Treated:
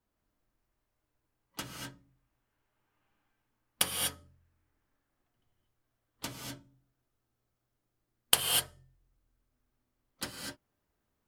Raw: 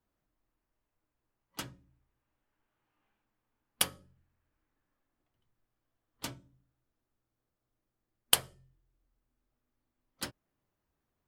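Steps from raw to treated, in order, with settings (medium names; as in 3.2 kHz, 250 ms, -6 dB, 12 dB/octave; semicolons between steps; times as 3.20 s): gated-style reverb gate 270 ms rising, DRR 1 dB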